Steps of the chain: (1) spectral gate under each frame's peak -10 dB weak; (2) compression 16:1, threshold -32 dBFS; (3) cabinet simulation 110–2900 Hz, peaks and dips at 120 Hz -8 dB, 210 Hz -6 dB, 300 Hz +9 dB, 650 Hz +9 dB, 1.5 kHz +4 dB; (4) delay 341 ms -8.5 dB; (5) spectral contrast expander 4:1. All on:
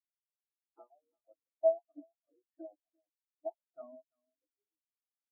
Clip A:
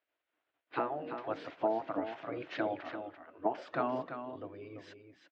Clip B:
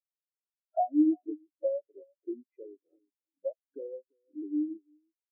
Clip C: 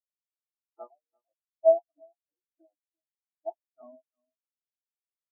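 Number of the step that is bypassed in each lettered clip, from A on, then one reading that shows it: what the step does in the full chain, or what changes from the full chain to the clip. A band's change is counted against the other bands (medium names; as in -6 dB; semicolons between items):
5, momentary loudness spread change -7 LU; 1, crest factor change -5.0 dB; 2, mean gain reduction 2.0 dB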